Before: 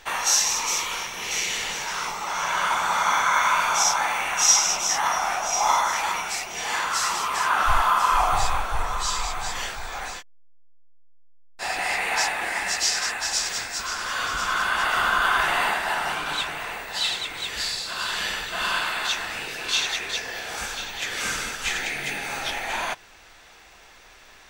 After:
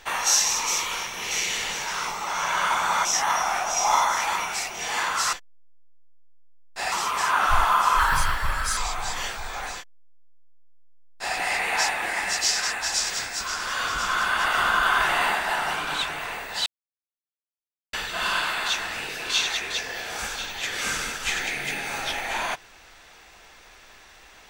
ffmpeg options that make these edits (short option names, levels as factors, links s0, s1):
-filter_complex "[0:a]asplit=8[s0][s1][s2][s3][s4][s5][s6][s7];[s0]atrim=end=3.052[s8];[s1]atrim=start=4.808:end=7.092[s9];[s2]atrim=start=10.158:end=11.752[s10];[s3]atrim=start=7.088:end=8.164[s11];[s4]atrim=start=8.16:end=9.16,asetpts=PTS-STARTPTS,asetrate=56448,aresample=44100,atrim=end_sample=34453,asetpts=PTS-STARTPTS[s12];[s5]atrim=start=9.156:end=17.05,asetpts=PTS-STARTPTS,afade=t=out:st=7.89:d=0.004:c=hsin[s13];[s6]atrim=start=17.05:end=18.32,asetpts=PTS-STARTPTS,volume=0[s14];[s7]atrim=start=18.32,asetpts=PTS-STARTPTS,afade=t=in:d=0.004:c=hsin[s15];[s8][s9]acrossfade=d=0.004:c1=hsin:c2=hsin[s16];[s16][s10]acrossfade=d=0.004:c1=hsin:c2=hsin[s17];[s17][s11]acrossfade=d=0.004:c1=hsin:c2=hsin[s18];[s18][s12]acrossfade=d=0.004:c1=hsin:c2=hsin[s19];[s13][s14][s15]concat=n=3:v=0:a=1[s20];[s19][s20]acrossfade=d=0.004:c1=hsin:c2=hsin"